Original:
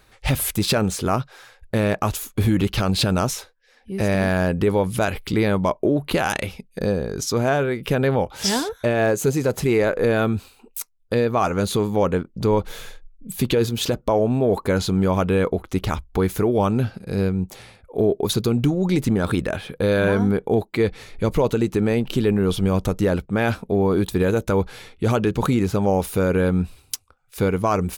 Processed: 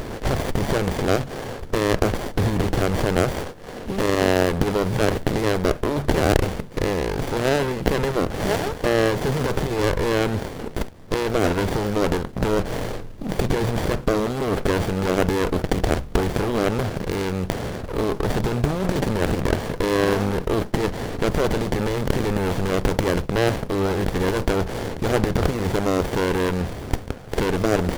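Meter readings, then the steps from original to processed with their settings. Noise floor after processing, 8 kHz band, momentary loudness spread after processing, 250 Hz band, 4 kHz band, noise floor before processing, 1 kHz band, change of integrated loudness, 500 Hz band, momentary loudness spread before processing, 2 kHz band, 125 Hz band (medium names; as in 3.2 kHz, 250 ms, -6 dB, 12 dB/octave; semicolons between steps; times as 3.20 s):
-35 dBFS, -3.5 dB, 7 LU, -2.5 dB, -1.0 dB, -56 dBFS, 0.0 dB, -1.5 dB, -1.0 dB, 6 LU, +0.5 dB, -1.5 dB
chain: spectral levelling over time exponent 0.4; dynamic bell 290 Hz, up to -6 dB, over -26 dBFS, Q 0.82; sliding maximum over 33 samples; trim -2.5 dB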